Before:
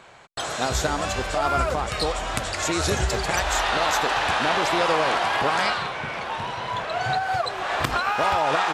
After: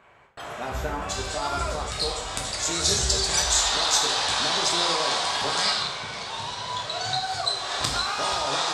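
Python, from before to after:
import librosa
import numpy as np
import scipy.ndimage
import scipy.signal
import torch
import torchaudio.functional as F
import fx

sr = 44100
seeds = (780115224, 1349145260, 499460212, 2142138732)

y = fx.band_shelf(x, sr, hz=5800.0, db=fx.steps((0.0, -9.5), (1.08, 8.5), (2.84, 15.0)), octaves=1.7)
y = fx.rev_plate(y, sr, seeds[0], rt60_s=0.61, hf_ratio=0.95, predelay_ms=0, drr_db=0.0)
y = y * 10.0 ** (-8.5 / 20.0)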